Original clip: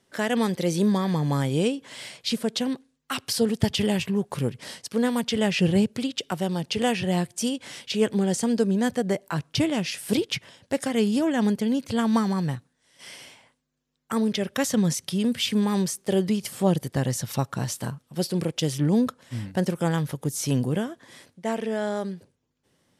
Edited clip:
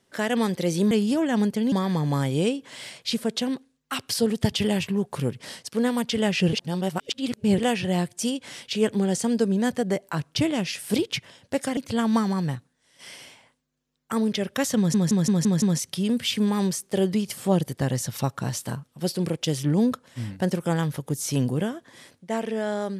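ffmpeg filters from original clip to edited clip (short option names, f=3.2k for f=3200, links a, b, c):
-filter_complex "[0:a]asplit=11[a][b][c][d][e][f][g][h][i][j][k];[a]atrim=end=0.912[l];[b]atrim=start=10.958:end=11.772[m];[c]atrim=start=0.908:end=5.722[n];[d]atrim=start=5.718:end=6.772,asetpts=PTS-STARTPTS,areverse[o];[e]atrim=start=6.768:end=10.962[p];[f]atrim=start=11.768:end=14.942[q];[g]atrim=start=14.768:end=14.942[r];[h]atrim=start=14.768:end=14.942[s];[i]atrim=start=14.768:end=14.942[t];[j]atrim=start=14.768:end=14.942[u];[k]atrim=start=14.768[v];[l][m]acrossfade=d=0.004:c1=hsin:c2=hsin[w];[w][n]acrossfade=d=0.004:c1=hsin:c2=hsin[x];[x][o]acrossfade=d=0.004:c1=hsin:c2=hsin[y];[y][p]acrossfade=d=0.004:c1=hsin:c2=hsin[z];[z][q]acrossfade=d=0.004:c1=hsin:c2=hsin[aa];[aa][r]acrossfade=d=0.004:c1=hsin:c2=hsin[ab];[ab][s]acrossfade=d=0.004:c1=hsin:c2=hsin[ac];[ac][t]acrossfade=d=0.004:c1=hsin:c2=hsin[ad];[ad][u]acrossfade=d=0.004:c1=hsin:c2=hsin[ae];[ae][v]acrossfade=d=0.004:c1=hsin:c2=hsin"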